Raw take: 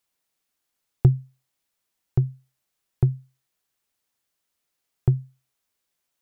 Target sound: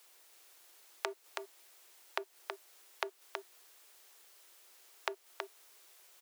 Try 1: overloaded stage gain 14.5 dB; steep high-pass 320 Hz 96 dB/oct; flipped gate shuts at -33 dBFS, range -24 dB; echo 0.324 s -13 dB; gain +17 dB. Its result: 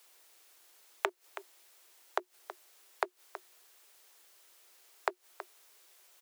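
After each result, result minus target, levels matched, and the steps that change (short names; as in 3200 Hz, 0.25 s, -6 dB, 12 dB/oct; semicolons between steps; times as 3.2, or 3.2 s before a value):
echo-to-direct -8 dB; overloaded stage: distortion -6 dB
change: echo 0.324 s -5 dB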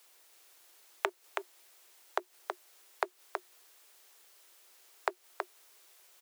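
overloaded stage: distortion -6 dB
change: overloaded stage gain 22.5 dB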